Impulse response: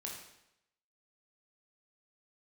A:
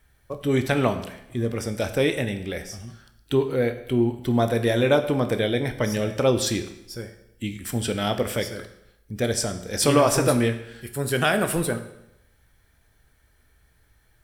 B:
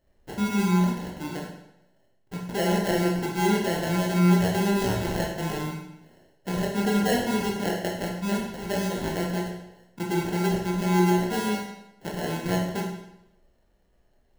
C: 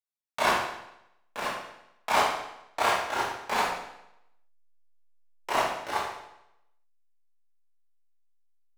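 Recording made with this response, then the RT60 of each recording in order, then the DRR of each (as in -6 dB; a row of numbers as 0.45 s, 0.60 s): B; 0.85 s, 0.85 s, 0.85 s; 7.5 dB, -2.0 dB, -9.0 dB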